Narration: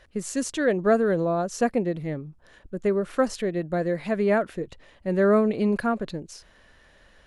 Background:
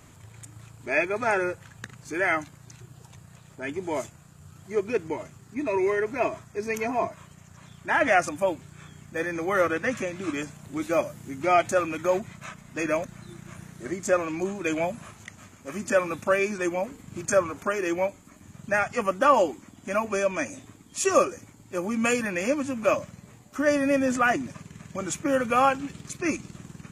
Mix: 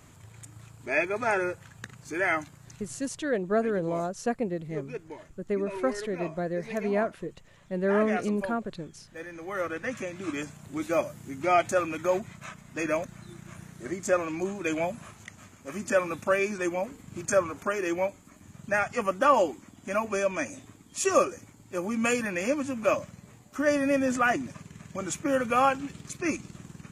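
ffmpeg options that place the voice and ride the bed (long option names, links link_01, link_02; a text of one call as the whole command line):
ffmpeg -i stem1.wav -i stem2.wav -filter_complex "[0:a]adelay=2650,volume=-5.5dB[link_01];[1:a]volume=7.5dB,afade=type=out:start_time=2.86:duration=0.4:silence=0.334965,afade=type=in:start_time=9.38:duration=1.09:silence=0.334965[link_02];[link_01][link_02]amix=inputs=2:normalize=0" out.wav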